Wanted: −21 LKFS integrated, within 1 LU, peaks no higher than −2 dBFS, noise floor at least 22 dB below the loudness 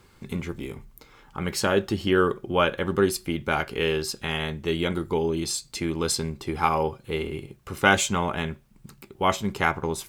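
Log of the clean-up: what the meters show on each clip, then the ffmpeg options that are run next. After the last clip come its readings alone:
integrated loudness −26.0 LKFS; sample peak −2.0 dBFS; target loudness −21.0 LKFS
→ -af "volume=5dB,alimiter=limit=-2dB:level=0:latency=1"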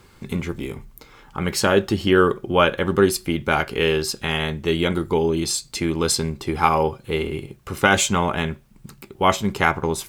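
integrated loudness −21.0 LKFS; sample peak −2.0 dBFS; background noise floor −51 dBFS

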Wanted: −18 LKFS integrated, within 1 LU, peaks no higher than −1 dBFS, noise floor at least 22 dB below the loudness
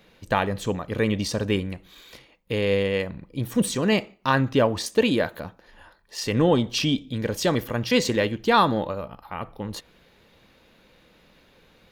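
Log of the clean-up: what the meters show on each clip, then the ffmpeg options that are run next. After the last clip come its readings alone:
integrated loudness −24.0 LKFS; sample peak −5.0 dBFS; target loudness −18.0 LKFS
→ -af "volume=6dB,alimiter=limit=-1dB:level=0:latency=1"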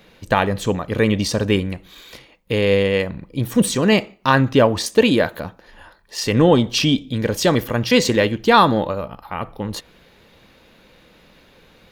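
integrated loudness −18.5 LKFS; sample peak −1.0 dBFS; background noise floor −52 dBFS

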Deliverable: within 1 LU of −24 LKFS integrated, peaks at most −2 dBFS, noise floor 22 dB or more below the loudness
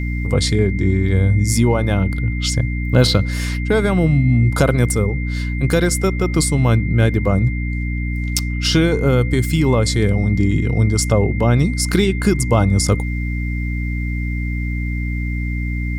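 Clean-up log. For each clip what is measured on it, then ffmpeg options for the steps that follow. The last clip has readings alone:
mains hum 60 Hz; hum harmonics up to 300 Hz; level of the hum −19 dBFS; interfering tone 2,100 Hz; level of the tone −30 dBFS; integrated loudness −18.0 LKFS; sample peak −1.5 dBFS; target loudness −24.0 LKFS
→ -af "bandreject=frequency=60:width_type=h:width=6,bandreject=frequency=120:width_type=h:width=6,bandreject=frequency=180:width_type=h:width=6,bandreject=frequency=240:width_type=h:width=6,bandreject=frequency=300:width_type=h:width=6"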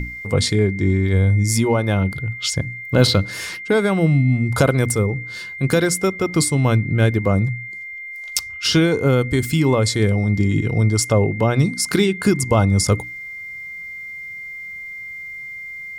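mains hum none found; interfering tone 2,100 Hz; level of the tone −30 dBFS
→ -af "bandreject=frequency=2100:width=30"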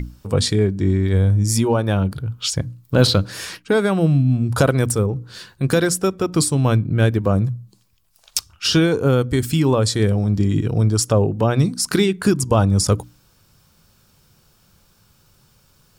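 interfering tone none found; integrated loudness −18.5 LKFS; sample peak −1.5 dBFS; target loudness −24.0 LKFS
→ -af "volume=-5.5dB"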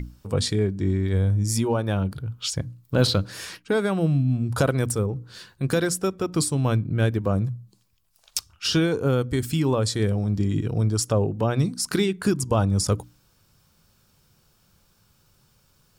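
integrated loudness −24.0 LKFS; sample peak −7.0 dBFS; background noise floor −63 dBFS

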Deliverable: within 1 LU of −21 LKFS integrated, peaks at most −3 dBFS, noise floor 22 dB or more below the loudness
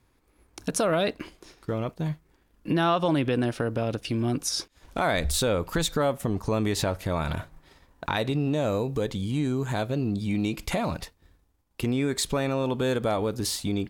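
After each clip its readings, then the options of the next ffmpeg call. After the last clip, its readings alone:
integrated loudness −27.5 LKFS; sample peak −12.0 dBFS; target loudness −21.0 LKFS
→ -af "volume=6.5dB"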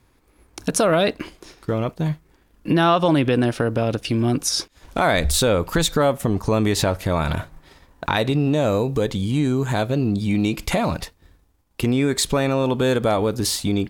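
integrated loudness −21.0 LKFS; sample peak −5.5 dBFS; background noise floor −60 dBFS

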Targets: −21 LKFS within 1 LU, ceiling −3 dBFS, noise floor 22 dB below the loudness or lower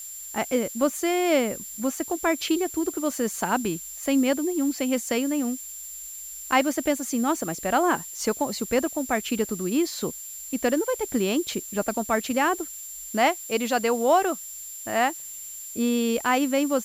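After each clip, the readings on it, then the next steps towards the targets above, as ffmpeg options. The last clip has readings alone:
interfering tone 7,300 Hz; level of the tone −37 dBFS; background noise floor −39 dBFS; target noise floor −48 dBFS; integrated loudness −25.5 LKFS; sample peak −7.5 dBFS; target loudness −21.0 LKFS
→ -af "bandreject=frequency=7300:width=30"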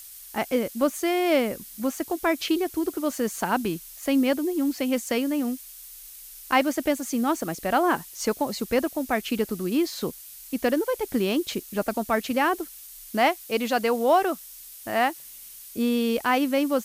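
interfering tone none found; background noise floor −44 dBFS; target noise floor −48 dBFS
→ -af "afftdn=noise_reduction=6:noise_floor=-44"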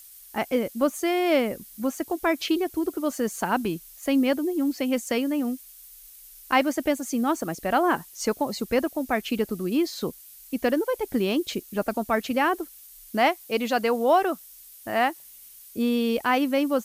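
background noise floor −48 dBFS; integrated loudness −25.5 LKFS; sample peak −8.0 dBFS; target loudness −21.0 LKFS
→ -af "volume=4.5dB"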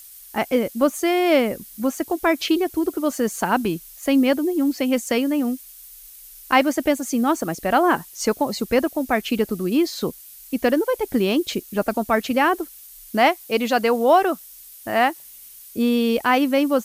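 integrated loudness −21.0 LKFS; sample peak −3.5 dBFS; background noise floor −44 dBFS

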